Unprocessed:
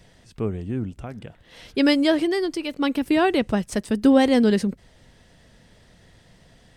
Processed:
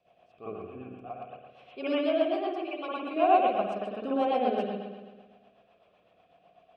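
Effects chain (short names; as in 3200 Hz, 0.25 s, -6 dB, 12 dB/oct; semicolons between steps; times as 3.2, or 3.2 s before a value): vowel filter a; spring tank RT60 1.4 s, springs 55 ms, chirp 80 ms, DRR -8.5 dB; rotary speaker horn 8 Hz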